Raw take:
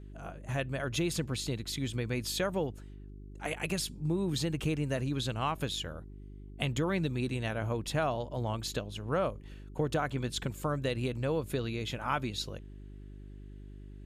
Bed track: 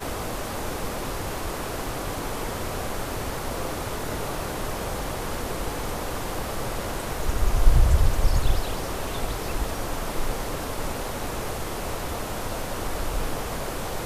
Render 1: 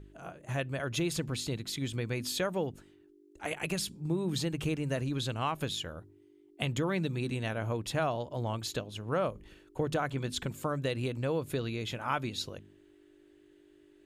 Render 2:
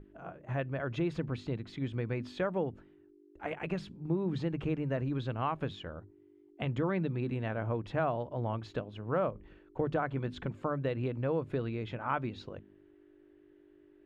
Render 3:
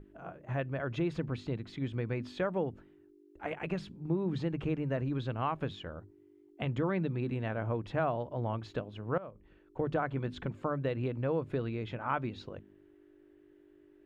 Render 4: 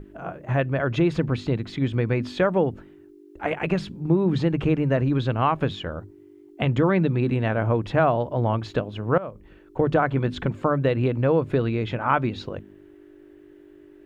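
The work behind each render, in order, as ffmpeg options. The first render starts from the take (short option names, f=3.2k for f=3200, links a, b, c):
-af "bandreject=f=50:t=h:w=4,bandreject=f=100:t=h:w=4,bandreject=f=150:t=h:w=4,bandreject=f=200:t=h:w=4,bandreject=f=250:t=h:w=4"
-af "lowpass=1.8k,bandreject=f=50:t=h:w=6,bandreject=f=100:t=h:w=6,bandreject=f=150:t=h:w=6"
-filter_complex "[0:a]asplit=2[a][b];[a]atrim=end=9.18,asetpts=PTS-STARTPTS,afade=t=out:st=9.176:d=0.004:c=hsin:silence=0.125893[c];[b]atrim=start=9.18,asetpts=PTS-STARTPTS,afade=t=in:d=0.74:silence=0.125893[d];[c][d]concat=n=2:v=0:a=1"
-af "volume=11.5dB"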